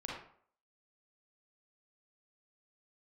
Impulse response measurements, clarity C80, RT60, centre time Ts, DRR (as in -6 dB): 5.0 dB, 0.55 s, 54 ms, -4.5 dB